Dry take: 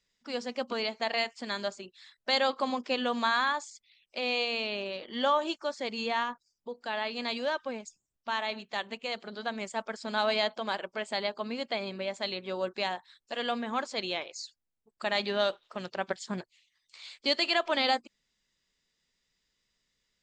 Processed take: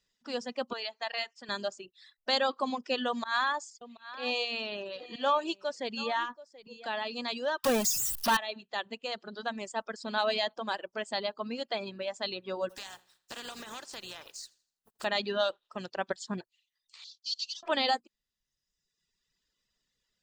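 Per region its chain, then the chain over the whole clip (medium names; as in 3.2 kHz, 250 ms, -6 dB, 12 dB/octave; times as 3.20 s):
0.73–1.49 s: high-pass 970 Hz 6 dB/octave + distance through air 70 m
3.08–6.86 s: slow attack 119 ms + delay 732 ms -15.5 dB
7.64–8.37 s: zero-crossing glitches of -35 dBFS + power-law waveshaper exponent 0.35
12.69–15.03 s: spectral contrast reduction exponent 0.38 + compression 4:1, threshold -38 dBFS + feedback delay 82 ms, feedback 37%, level -13 dB
17.04–17.63 s: CVSD coder 32 kbps + inverse Chebyshev high-pass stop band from 2 kHz + comb 4 ms, depth 66%
whole clip: reverb removal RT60 1.2 s; band-stop 2.2 kHz, Q 8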